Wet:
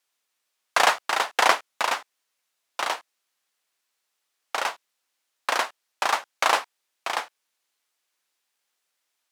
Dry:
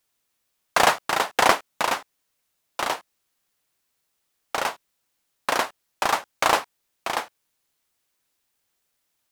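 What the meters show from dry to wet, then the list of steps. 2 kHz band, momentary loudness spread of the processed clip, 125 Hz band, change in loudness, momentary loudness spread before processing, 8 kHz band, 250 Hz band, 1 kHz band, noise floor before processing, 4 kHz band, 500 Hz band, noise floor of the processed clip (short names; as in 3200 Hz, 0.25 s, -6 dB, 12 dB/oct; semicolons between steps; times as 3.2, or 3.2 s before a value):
0.0 dB, 12 LU, under -10 dB, -1.0 dB, 12 LU, -1.5 dB, -8.5 dB, -1.0 dB, -75 dBFS, 0.0 dB, -3.5 dB, -79 dBFS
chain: weighting filter A; gain -1 dB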